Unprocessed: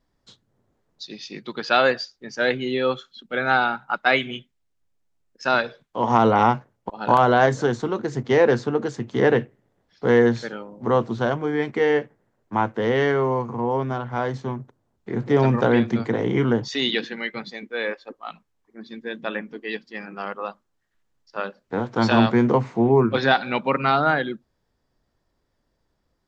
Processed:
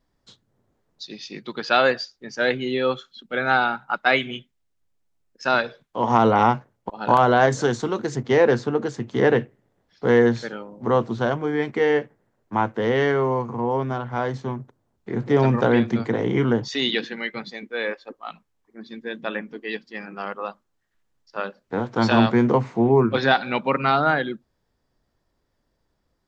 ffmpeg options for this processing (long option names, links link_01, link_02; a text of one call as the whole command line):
ffmpeg -i in.wav -filter_complex "[0:a]asettb=1/sr,asplit=3[link_01][link_02][link_03];[link_01]atrim=end=7.524[link_04];[link_02]atrim=start=7.52:end=8.16,asetpts=PTS-STARTPTS,afade=type=in:duration=0.004:curve=qsin,afade=type=out:start_time=0.636:duration=0.004:curve=qsin,highshelf=frequency=3600:gain=8[link_05];[link_03]atrim=start=8.156[link_06];[link_04][link_05]acrossfade=duration=0.004:curve1=hsin:curve2=qsin[link_07];[link_07][link_06]acrossfade=duration=0.004:curve1=qsin:curve2=hsin" out.wav